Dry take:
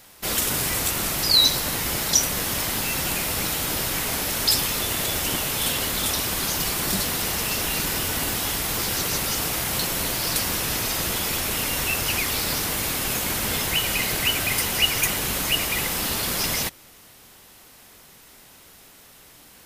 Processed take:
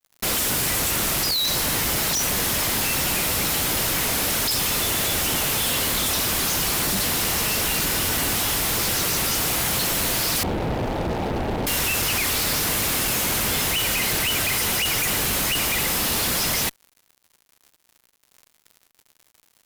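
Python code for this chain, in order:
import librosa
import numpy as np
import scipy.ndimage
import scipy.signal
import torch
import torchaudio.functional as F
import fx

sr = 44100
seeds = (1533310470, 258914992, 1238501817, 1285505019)

y = fx.ellip_lowpass(x, sr, hz=870.0, order=4, stop_db=40, at=(10.43, 11.67))
y = fx.fuzz(y, sr, gain_db=38.0, gate_db=-41.0)
y = F.gain(torch.from_numpy(y), -8.0).numpy()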